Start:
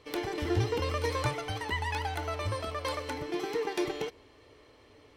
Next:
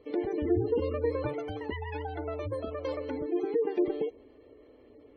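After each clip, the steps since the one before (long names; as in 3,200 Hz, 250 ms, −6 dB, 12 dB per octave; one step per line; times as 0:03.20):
gate on every frequency bin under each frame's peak −20 dB strong
graphic EQ with 10 bands 125 Hz −8 dB, 250 Hz +7 dB, 500 Hz +5 dB, 1,000 Hz −8 dB, 2,000 Hz −4 dB, 4,000 Hz −8 dB, 8,000 Hz −11 dB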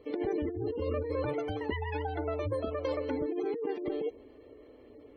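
compressor whose output falls as the input rises −32 dBFS, ratio −1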